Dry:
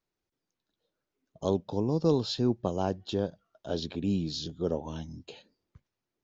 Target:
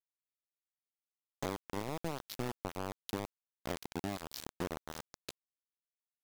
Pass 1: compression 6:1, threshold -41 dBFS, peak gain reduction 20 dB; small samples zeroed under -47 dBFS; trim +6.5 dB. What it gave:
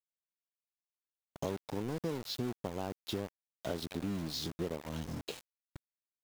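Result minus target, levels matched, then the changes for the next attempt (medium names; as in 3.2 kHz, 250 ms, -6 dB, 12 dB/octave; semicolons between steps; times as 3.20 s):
small samples zeroed: distortion -11 dB
change: small samples zeroed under -37.5 dBFS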